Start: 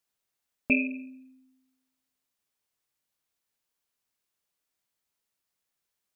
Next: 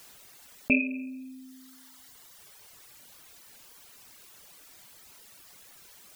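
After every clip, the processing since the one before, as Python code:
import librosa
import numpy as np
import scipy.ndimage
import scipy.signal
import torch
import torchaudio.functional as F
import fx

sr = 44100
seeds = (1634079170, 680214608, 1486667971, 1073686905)

y = fx.dereverb_blind(x, sr, rt60_s=1.3)
y = fx.env_flatten(y, sr, amount_pct=50)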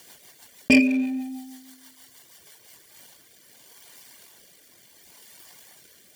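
y = fx.leveller(x, sr, passes=2)
y = fx.notch_comb(y, sr, f0_hz=1300.0)
y = fx.rotary_switch(y, sr, hz=6.3, then_hz=0.7, switch_at_s=2.35)
y = F.gain(torch.from_numpy(y), 7.0).numpy()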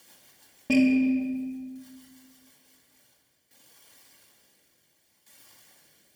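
y = fx.tremolo_shape(x, sr, shape='saw_down', hz=0.57, depth_pct=80)
y = fx.room_shoebox(y, sr, seeds[0], volume_m3=2100.0, walls='mixed', distance_m=2.3)
y = F.gain(torch.from_numpy(y), -7.5).numpy()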